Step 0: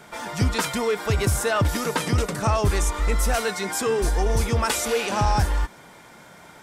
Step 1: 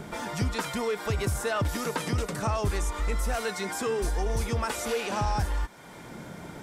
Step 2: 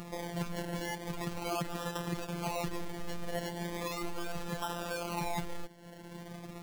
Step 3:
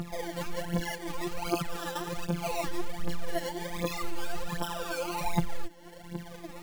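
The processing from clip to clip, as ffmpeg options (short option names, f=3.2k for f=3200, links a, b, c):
-filter_complex "[0:a]acrossover=split=440|2000[a][b][c];[a]acompressor=mode=upward:threshold=-31dB:ratio=2.5[d];[c]alimiter=limit=-23dB:level=0:latency=1[e];[d][b][e]amix=inputs=3:normalize=0,acompressor=threshold=-36dB:ratio=1.5"
-filter_complex "[0:a]asplit=2[a][b];[b]alimiter=level_in=0.5dB:limit=-24dB:level=0:latency=1:release=21,volume=-0.5dB,volume=2.5dB[c];[a][c]amix=inputs=2:normalize=0,acrusher=samples=28:mix=1:aa=0.000001:lfo=1:lforange=16.8:lforate=0.38,afftfilt=real='hypot(re,im)*cos(PI*b)':imag='0':win_size=1024:overlap=0.75,volume=-8.5dB"
-af "aphaser=in_gain=1:out_gain=1:delay=3.9:decay=0.74:speed=1.3:type=triangular"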